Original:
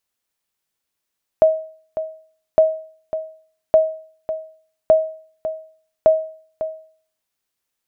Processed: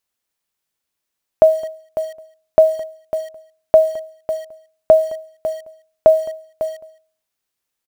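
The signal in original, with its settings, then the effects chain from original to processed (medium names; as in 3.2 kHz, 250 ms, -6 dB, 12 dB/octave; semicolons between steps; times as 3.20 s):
sonar ping 635 Hz, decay 0.49 s, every 1.16 s, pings 5, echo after 0.55 s, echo -12 dB -5 dBFS
in parallel at -5.5 dB: word length cut 6-bit, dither none; on the sum: delay 214 ms -21.5 dB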